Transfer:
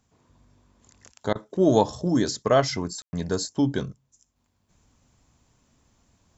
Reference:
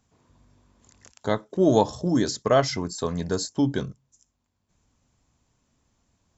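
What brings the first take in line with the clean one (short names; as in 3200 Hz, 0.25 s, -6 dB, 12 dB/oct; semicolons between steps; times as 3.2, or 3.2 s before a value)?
room tone fill 3.02–3.13; interpolate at 1.33, 22 ms; gain correction -5.5 dB, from 4.36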